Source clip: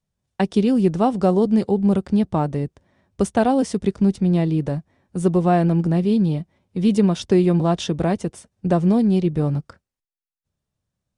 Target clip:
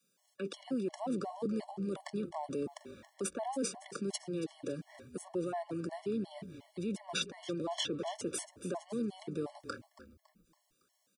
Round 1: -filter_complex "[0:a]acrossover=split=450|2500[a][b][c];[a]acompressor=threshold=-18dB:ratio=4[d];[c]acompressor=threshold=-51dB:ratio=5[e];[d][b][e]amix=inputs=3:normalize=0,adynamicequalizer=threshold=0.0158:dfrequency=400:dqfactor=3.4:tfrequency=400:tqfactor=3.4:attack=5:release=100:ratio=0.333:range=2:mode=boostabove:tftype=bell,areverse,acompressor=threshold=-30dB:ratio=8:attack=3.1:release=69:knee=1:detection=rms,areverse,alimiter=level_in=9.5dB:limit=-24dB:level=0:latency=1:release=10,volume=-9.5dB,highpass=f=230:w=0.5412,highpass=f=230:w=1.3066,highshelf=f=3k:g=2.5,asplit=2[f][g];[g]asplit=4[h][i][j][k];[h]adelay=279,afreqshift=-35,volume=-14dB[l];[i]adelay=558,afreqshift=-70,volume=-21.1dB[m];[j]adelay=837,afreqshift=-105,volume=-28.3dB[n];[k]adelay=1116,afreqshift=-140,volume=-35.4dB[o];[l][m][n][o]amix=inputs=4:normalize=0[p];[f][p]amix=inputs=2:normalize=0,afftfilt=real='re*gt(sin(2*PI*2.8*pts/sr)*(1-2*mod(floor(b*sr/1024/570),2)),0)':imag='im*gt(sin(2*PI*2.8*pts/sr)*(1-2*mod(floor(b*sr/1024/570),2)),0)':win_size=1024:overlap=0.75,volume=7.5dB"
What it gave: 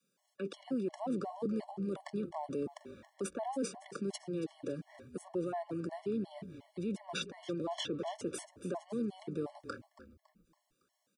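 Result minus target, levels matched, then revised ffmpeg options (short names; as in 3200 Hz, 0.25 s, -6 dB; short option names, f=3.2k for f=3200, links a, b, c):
8000 Hz band -5.5 dB
-filter_complex "[0:a]acrossover=split=450|2500[a][b][c];[a]acompressor=threshold=-18dB:ratio=4[d];[c]acompressor=threshold=-51dB:ratio=5[e];[d][b][e]amix=inputs=3:normalize=0,adynamicequalizer=threshold=0.0158:dfrequency=400:dqfactor=3.4:tfrequency=400:tqfactor=3.4:attack=5:release=100:ratio=0.333:range=2:mode=boostabove:tftype=bell,areverse,acompressor=threshold=-30dB:ratio=8:attack=3.1:release=69:knee=1:detection=rms,areverse,alimiter=level_in=9.5dB:limit=-24dB:level=0:latency=1:release=10,volume=-9.5dB,highpass=f=230:w=0.5412,highpass=f=230:w=1.3066,highshelf=f=3k:g=9.5,asplit=2[f][g];[g]asplit=4[h][i][j][k];[h]adelay=279,afreqshift=-35,volume=-14dB[l];[i]adelay=558,afreqshift=-70,volume=-21.1dB[m];[j]adelay=837,afreqshift=-105,volume=-28.3dB[n];[k]adelay=1116,afreqshift=-140,volume=-35.4dB[o];[l][m][n][o]amix=inputs=4:normalize=0[p];[f][p]amix=inputs=2:normalize=0,afftfilt=real='re*gt(sin(2*PI*2.8*pts/sr)*(1-2*mod(floor(b*sr/1024/570),2)),0)':imag='im*gt(sin(2*PI*2.8*pts/sr)*(1-2*mod(floor(b*sr/1024/570),2)),0)':win_size=1024:overlap=0.75,volume=7.5dB"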